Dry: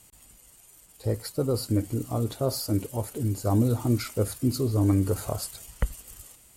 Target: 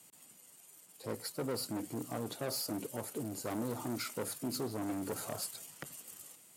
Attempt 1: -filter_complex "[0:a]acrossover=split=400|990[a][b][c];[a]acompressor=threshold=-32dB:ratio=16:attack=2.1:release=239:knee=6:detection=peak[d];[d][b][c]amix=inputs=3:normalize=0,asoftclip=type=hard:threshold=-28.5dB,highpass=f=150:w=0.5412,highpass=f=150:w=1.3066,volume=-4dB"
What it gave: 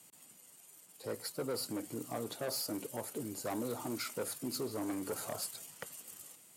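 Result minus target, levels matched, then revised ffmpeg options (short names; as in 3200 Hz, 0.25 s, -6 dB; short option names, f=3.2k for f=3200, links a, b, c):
compressor: peak gain reduction +8 dB
-filter_complex "[0:a]acrossover=split=400|990[a][b][c];[a]acompressor=threshold=-23.5dB:ratio=16:attack=2.1:release=239:knee=6:detection=peak[d];[d][b][c]amix=inputs=3:normalize=0,asoftclip=type=hard:threshold=-28.5dB,highpass=f=150:w=0.5412,highpass=f=150:w=1.3066,volume=-4dB"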